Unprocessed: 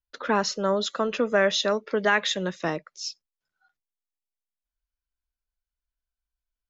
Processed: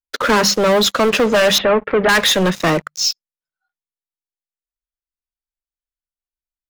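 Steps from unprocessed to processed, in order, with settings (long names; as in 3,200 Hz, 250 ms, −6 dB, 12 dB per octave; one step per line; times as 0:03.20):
mains-hum notches 50/100/150/200 Hz
leveller curve on the samples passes 5
0:01.58–0:02.09: low-pass filter 2,500 Hz 24 dB per octave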